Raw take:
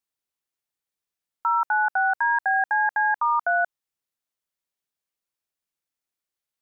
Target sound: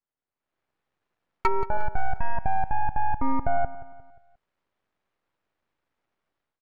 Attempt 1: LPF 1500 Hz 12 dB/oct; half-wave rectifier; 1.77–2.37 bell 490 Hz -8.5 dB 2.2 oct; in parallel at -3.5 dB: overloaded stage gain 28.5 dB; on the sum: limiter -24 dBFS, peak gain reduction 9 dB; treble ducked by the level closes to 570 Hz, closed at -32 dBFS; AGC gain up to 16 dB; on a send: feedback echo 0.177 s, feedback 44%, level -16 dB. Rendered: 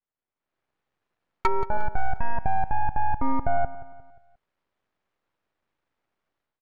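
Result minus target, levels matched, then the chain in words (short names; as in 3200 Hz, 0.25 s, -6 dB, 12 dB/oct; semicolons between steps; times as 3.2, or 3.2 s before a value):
overloaded stage: distortion -4 dB
LPF 1500 Hz 12 dB/oct; half-wave rectifier; 1.77–2.37 bell 490 Hz -8.5 dB 2.2 oct; in parallel at -3.5 dB: overloaded stage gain 38.5 dB; on the sum: limiter -24 dBFS, peak gain reduction 8 dB; treble ducked by the level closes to 570 Hz, closed at -32 dBFS; AGC gain up to 16 dB; on a send: feedback echo 0.177 s, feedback 44%, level -16 dB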